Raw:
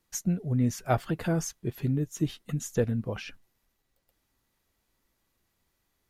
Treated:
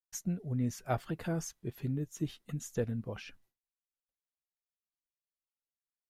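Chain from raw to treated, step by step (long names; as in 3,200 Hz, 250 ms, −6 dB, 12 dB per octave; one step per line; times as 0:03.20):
downward expander −56 dBFS
level −7 dB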